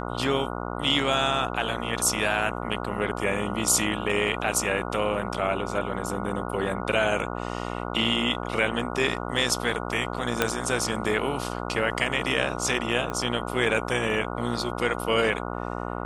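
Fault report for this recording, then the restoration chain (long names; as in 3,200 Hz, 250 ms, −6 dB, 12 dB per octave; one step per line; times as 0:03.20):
mains buzz 60 Hz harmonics 24 −32 dBFS
0:10.42: click −6 dBFS
0:13.10: click −18 dBFS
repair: click removal
hum removal 60 Hz, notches 24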